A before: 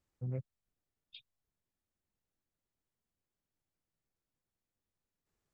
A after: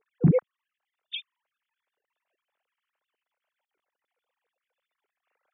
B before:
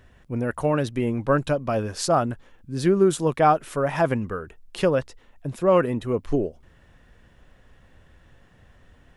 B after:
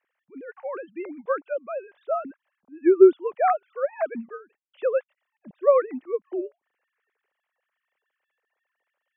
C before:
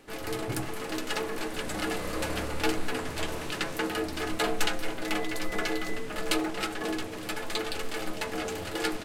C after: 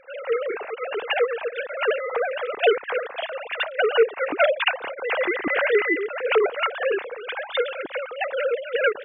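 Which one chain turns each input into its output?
three sine waves on the formant tracks
expander for the loud parts 1.5 to 1, over −37 dBFS
loudness normalisation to −24 LKFS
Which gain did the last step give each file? +18.5, +1.5, +9.0 decibels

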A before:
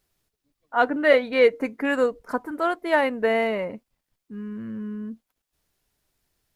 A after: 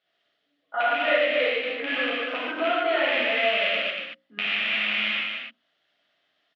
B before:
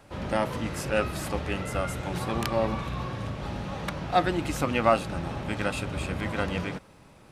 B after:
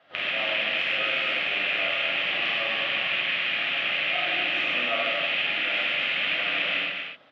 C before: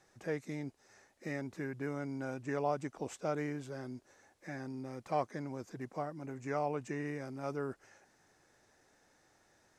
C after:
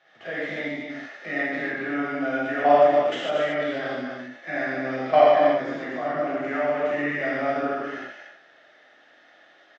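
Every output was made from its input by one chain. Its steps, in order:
loose part that buzzes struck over −35 dBFS, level −10 dBFS
output level in coarse steps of 16 dB
parametric band 3,200 Hz +5 dB 0.39 octaves
downward compressor 6 to 1, threshold −32 dBFS
loudspeaker in its box 330–4,100 Hz, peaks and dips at 410 Hz −5 dB, 650 Hz +9 dB, 930 Hz −9 dB, 1,300 Hz +5 dB, 1,900 Hz +6 dB, 3,100 Hz +5 dB
mains-hum notches 60/120/180/240/300/360/420/480/540 Hz
loudspeakers that aren't time-aligned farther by 52 metres −8 dB, 81 metres −6 dB
reverb whose tail is shaped and stops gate 170 ms flat, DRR −7.5 dB
loudness normalisation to −24 LKFS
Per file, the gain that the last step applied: +1.0, 0.0, +14.0 decibels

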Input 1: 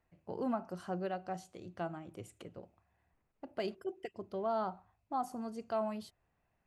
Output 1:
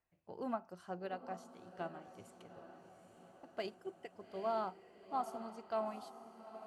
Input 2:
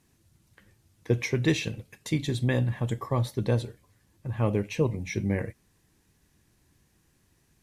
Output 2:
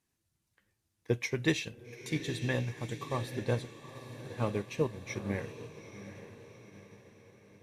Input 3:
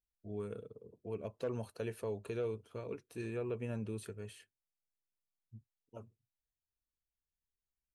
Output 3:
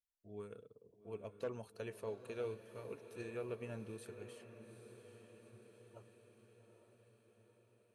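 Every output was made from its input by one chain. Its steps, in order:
low-shelf EQ 430 Hz −6.5 dB
on a send: feedback delay with all-pass diffusion 830 ms, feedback 61%, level −8 dB
on the sum: expander for the loud parts 1.5 to 1, over −48 dBFS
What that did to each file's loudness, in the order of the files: −3.5, −6.5, −6.0 LU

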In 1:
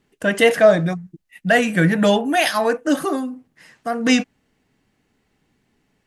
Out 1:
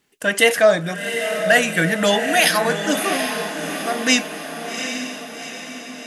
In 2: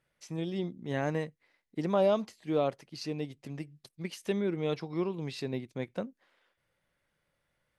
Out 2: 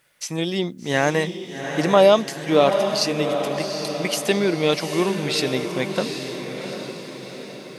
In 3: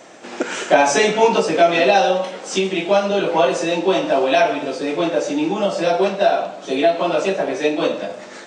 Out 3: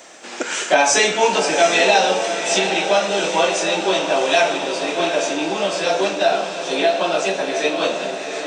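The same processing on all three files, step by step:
spectral tilt +2.5 dB per octave
feedback delay with all-pass diffusion 770 ms, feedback 55%, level −7 dB
normalise the peak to −2 dBFS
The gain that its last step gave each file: 0.0, +14.0, −0.5 decibels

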